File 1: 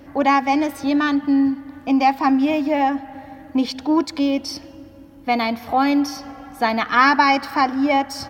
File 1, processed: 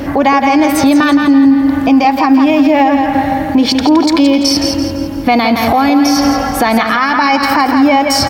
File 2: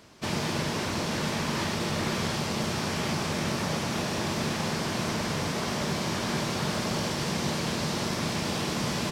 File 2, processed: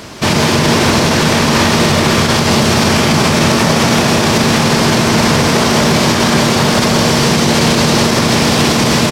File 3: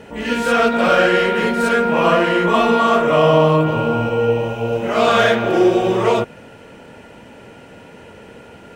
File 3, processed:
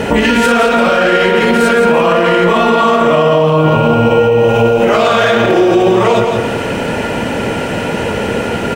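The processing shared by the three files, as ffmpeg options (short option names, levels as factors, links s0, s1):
-filter_complex "[0:a]acompressor=threshold=0.0447:ratio=6,asplit=2[s0][s1];[s1]aecho=0:1:168|336|504|672|840:0.398|0.159|0.0637|0.0255|0.0102[s2];[s0][s2]amix=inputs=2:normalize=0,alimiter=level_in=15.8:limit=0.891:release=50:level=0:latency=1,volume=0.891"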